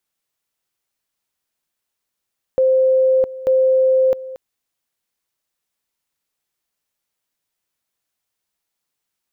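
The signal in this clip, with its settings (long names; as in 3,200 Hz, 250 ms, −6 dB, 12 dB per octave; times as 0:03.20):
tone at two levels in turn 522 Hz −11 dBFS, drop 17 dB, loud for 0.66 s, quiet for 0.23 s, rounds 2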